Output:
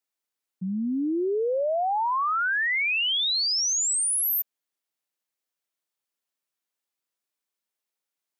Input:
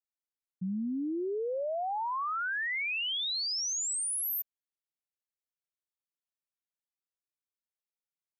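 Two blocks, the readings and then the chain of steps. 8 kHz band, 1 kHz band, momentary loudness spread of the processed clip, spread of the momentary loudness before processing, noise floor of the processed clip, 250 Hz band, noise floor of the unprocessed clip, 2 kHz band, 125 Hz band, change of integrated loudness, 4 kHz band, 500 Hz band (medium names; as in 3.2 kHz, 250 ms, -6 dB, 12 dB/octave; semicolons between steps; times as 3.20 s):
+8.0 dB, +8.0 dB, 7 LU, 5 LU, under -85 dBFS, +6.5 dB, under -85 dBFS, +8.0 dB, no reading, +8.0 dB, +8.0 dB, +8.0 dB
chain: high-pass 210 Hz; trim +8 dB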